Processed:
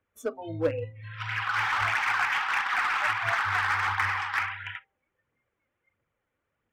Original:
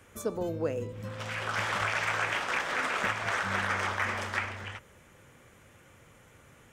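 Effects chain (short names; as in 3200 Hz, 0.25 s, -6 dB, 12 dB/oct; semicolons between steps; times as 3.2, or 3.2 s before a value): spectral noise reduction 29 dB; phaser 1.5 Hz, delay 4 ms, feedback 40%; tone controls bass -4 dB, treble -14 dB; in parallel at -9 dB: wavefolder -31.5 dBFS; on the sum: de-hum 131.1 Hz, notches 7; gain +3.5 dB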